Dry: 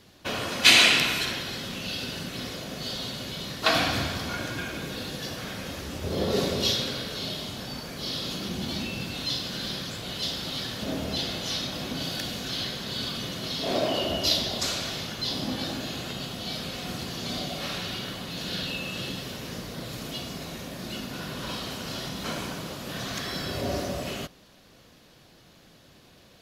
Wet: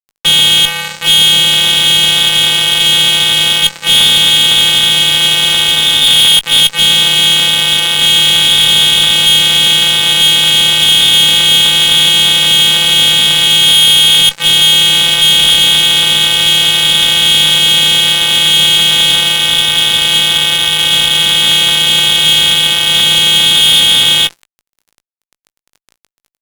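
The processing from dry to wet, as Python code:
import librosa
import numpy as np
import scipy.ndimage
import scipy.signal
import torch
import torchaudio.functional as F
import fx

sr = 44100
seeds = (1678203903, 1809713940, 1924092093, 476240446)

y = np.r_[np.sort(x[:len(x) // 128 * 128].reshape(-1, 128), axis=1).ravel(), x[len(x) // 128 * 128:]]
y = fx.freq_invert(y, sr, carrier_hz=3600)
y = fx.gate_flip(y, sr, shuts_db=-10.0, range_db=-28)
y = fx.env_lowpass(y, sr, base_hz=2500.0, full_db=-30.5)
y = fx.fuzz(y, sr, gain_db=39.0, gate_db=-44.0)
y = fx.doubler(y, sr, ms=19.0, db=-13.5)
y = y * librosa.db_to_amplitude(8.0)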